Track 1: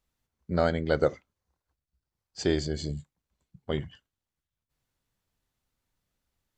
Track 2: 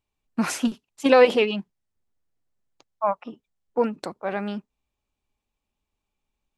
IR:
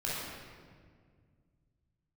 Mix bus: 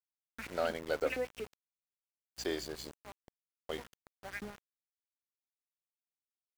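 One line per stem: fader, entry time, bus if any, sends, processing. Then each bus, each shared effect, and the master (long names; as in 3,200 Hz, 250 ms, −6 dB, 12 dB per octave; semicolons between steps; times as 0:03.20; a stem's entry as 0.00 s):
−9.0 dB, 0.00 s, no send, high-pass filter 420 Hz 12 dB per octave; mains hum 60 Hz, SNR 11 dB; leveller curve on the samples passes 1
+0.5 dB, 0.00 s, no send, graphic EQ with 10 bands 125 Hz −8 dB, 250 Hz +7 dB, 500 Hz −8 dB, 1,000 Hz −9 dB, 2,000 Hz +9 dB, 4,000 Hz −10 dB; auto-filter band-pass saw up 4.3 Hz 320–3,700 Hz; automatic ducking −15 dB, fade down 1.70 s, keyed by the first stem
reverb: not used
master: centre clipping without the shift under −44 dBFS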